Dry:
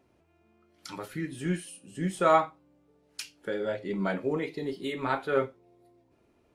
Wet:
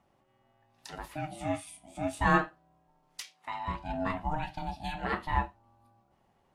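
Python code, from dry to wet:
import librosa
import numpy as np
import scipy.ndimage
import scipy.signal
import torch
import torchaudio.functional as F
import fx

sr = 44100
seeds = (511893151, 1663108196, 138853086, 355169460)

y = x * np.sin(2.0 * np.pi * 460.0 * np.arange(len(x)) / sr)
y = fx.weighting(y, sr, curve='A', at=(3.22, 3.68))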